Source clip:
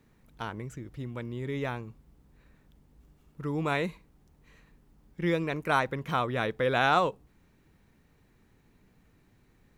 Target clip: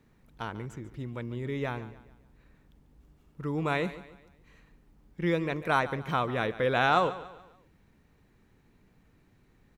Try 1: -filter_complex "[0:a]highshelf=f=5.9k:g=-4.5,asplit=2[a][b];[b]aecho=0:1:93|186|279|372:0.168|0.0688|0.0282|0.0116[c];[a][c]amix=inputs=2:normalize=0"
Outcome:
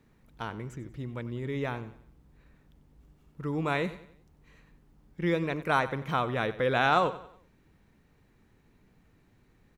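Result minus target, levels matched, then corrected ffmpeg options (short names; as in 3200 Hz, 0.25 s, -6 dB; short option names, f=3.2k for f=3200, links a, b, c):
echo 50 ms early
-filter_complex "[0:a]highshelf=f=5.9k:g=-4.5,asplit=2[a][b];[b]aecho=0:1:143|286|429|572:0.168|0.0688|0.0282|0.0116[c];[a][c]amix=inputs=2:normalize=0"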